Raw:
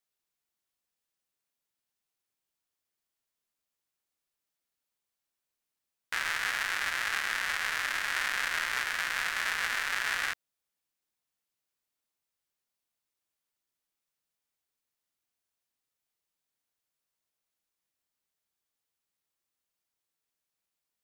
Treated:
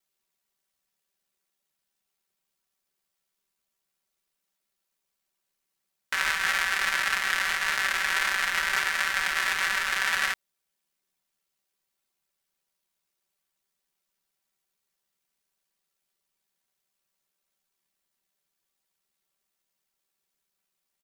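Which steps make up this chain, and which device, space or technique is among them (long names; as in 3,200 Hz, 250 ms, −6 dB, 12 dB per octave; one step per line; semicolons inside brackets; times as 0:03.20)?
ring-modulated robot voice (ring modulation 37 Hz; comb filter 5.2 ms, depth 82%)
level +6 dB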